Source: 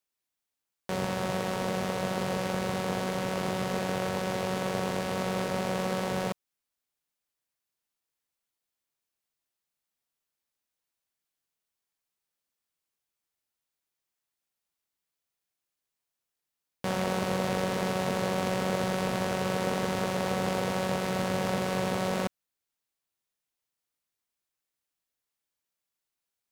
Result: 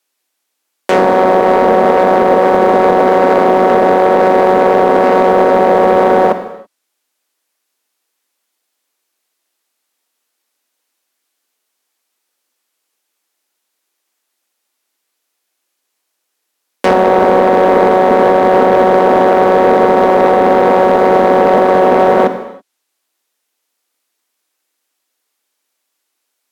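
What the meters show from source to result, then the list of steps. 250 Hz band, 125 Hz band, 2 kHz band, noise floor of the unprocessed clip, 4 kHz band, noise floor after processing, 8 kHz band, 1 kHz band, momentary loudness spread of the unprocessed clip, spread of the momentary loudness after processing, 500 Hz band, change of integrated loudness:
+17.0 dB, +8.0 dB, +16.5 dB, below −85 dBFS, +7.5 dB, −72 dBFS, can't be measured, +24.0 dB, 2 LU, 2 LU, +23.0 dB, +21.0 dB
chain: treble cut that deepens with the level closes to 1,100 Hz, closed at −26 dBFS
Butterworth high-pass 240 Hz 36 dB per octave
leveller curve on the samples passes 2
reverb whose tail is shaped and stops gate 350 ms falling, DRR 10 dB
boost into a limiter +21.5 dB
level −1 dB

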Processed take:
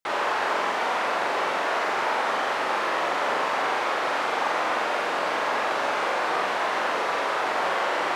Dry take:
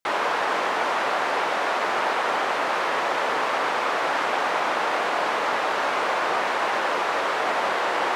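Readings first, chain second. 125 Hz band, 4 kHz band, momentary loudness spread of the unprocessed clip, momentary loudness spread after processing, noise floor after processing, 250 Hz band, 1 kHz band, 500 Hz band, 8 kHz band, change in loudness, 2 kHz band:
can't be measured, −1.5 dB, 0 LU, 1 LU, −27 dBFS, −1.5 dB, −1.5 dB, −1.5 dB, −1.5 dB, −1.5 dB, −1.5 dB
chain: flutter between parallel walls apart 7.5 metres, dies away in 0.63 s
level −3.5 dB

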